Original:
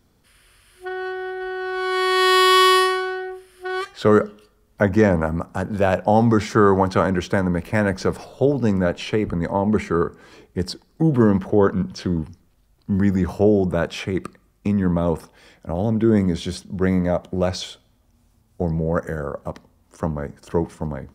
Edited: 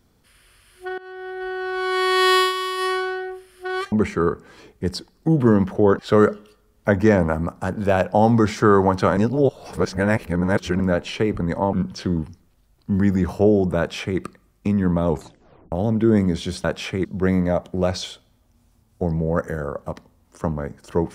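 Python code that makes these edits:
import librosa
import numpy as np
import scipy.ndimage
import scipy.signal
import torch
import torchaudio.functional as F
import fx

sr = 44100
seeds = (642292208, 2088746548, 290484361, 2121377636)

y = fx.edit(x, sr, fx.fade_in_from(start_s=0.98, length_s=0.48, floor_db=-19.0),
    fx.fade_down_up(start_s=2.28, length_s=0.74, db=-12.0, fade_s=0.25, curve='qsin'),
    fx.reverse_span(start_s=7.1, length_s=1.63),
    fx.move(start_s=9.66, length_s=2.07, to_s=3.92),
    fx.duplicate(start_s=13.78, length_s=0.41, to_s=16.64),
    fx.tape_stop(start_s=15.09, length_s=0.63), tone=tone)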